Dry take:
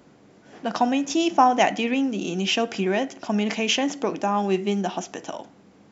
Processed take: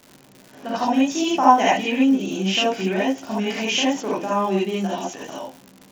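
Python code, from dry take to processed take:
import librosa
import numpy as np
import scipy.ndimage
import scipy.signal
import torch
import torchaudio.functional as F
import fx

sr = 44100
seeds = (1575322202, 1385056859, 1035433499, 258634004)

y = fx.rev_gated(x, sr, seeds[0], gate_ms=100, shape='rising', drr_db=-7.0)
y = fx.dmg_crackle(y, sr, seeds[1], per_s=190.0, level_db=-27.0)
y = y * librosa.db_to_amplitude(-6.0)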